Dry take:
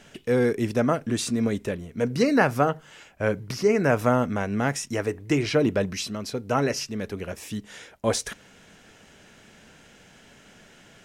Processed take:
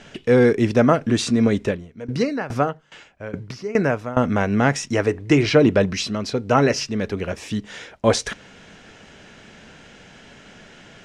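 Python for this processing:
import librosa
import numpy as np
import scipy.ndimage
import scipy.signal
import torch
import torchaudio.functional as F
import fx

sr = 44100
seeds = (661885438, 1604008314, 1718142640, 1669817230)

y = scipy.signal.sosfilt(scipy.signal.butter(2, 5800.0, 'lowpass', fs=sr, output='sos'), x)
y = fx.tremolo_decay(y, sr, direction='decaying', hz=2.4, depth_db=19, at=(1.7, 4.23), fade=0.02)
y = y * librosa.db_to_amplitude(7.0)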